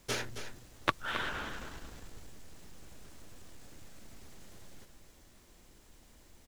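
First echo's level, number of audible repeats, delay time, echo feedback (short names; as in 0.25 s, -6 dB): -10.0 dB, 1, 0.27 s, no steady repeat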